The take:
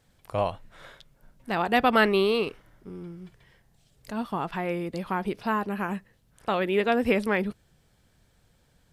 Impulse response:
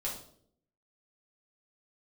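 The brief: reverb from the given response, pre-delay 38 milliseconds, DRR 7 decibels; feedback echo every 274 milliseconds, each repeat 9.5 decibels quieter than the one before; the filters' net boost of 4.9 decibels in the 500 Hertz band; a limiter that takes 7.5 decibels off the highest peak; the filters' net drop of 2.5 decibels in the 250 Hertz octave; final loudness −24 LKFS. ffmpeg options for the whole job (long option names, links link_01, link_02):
-filter_complex "[0:a]equalizer=frequency=250:width_type=o:gain=-6,equalizer=frequency=500:width_type=o:gain=8,alimiter=limit=-14dB:level=0:latency=1,aecho=1:1:274|548|822|1096:0.335|0.111|0.0365|0.012,asplit=2[link_01][link_02];[1:a]atrim=start_sample=2205,adelay=38[link_03];[link_02][link_03]afir=irnorm=-1:irlink=0,volume=-9.5dB[link_04];[link_01][link_04]amix=inputs=2:normalize=0,volume=1dB"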